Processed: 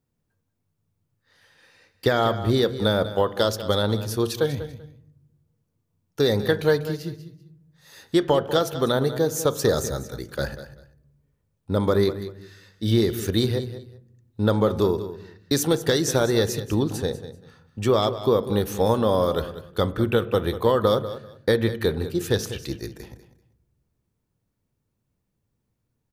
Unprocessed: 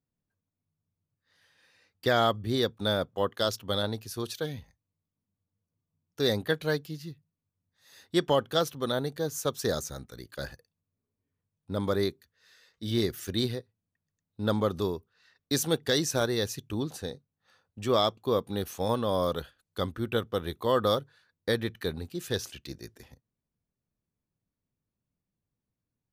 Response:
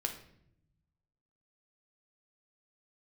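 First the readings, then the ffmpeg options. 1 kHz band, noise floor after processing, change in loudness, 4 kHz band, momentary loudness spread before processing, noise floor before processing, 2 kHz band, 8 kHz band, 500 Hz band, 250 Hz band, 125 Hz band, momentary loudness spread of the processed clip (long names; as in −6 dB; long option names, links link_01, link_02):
+5.0 dB, −76 dBFS, +6.5 dB, +3.0 dB, 14 LU, below −85 dBFS, +4.5 dB, +5.5 dB, +7.5 dB, +7.5 dB, +9.0 dB, 13 LU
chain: -filter_complex "[0:a]acompressor=threshold=-26dB:ratio=6,aecho=1:1:194|388:0.211|0.0444,asplit=2[link_01][link_02];[1:a]atrim=start_sample=2205,lowpass=3600,highshelf=frequency=2700:gain=-11.5[link_03];[link_02][link_03]afir=irnorm=-1:irlink=0,volume=-6dB[link_04];[link_01][link_04]amix=inputs=2:normalize=0,volume=7dB"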